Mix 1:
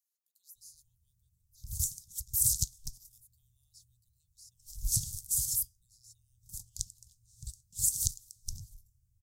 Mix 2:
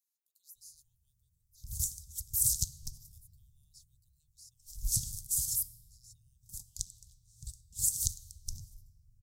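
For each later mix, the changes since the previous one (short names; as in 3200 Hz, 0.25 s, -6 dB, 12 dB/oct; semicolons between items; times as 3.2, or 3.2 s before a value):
background -4.0 dB; reverb: on, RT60 2.0 s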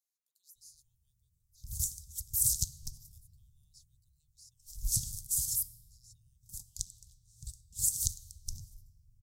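speech: add high shelf 12000 Hz -9.5 dB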